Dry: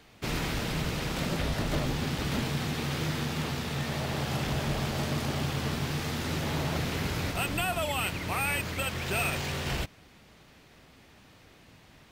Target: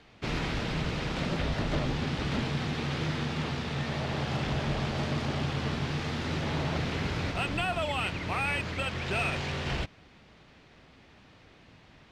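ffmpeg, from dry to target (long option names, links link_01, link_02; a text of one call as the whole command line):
ffmpeg -i in.wav -af "lowpass=4700" out.wav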